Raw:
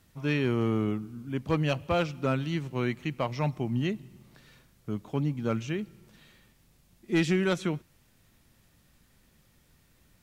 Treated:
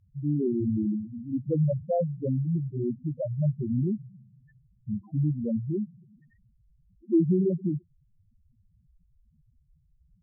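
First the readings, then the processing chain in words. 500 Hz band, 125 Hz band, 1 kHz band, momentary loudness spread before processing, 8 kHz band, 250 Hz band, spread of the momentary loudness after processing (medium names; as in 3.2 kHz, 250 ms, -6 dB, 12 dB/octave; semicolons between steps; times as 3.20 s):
+0.5 dB, +3.0 dB, no reading, 9 LU, under -30 dB, +2.5 dB, 9 LU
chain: loudest bins only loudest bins 2; low-pass that closes with the level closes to 830 Hz, closed at -27.5 dBFS; trim +6.5 dB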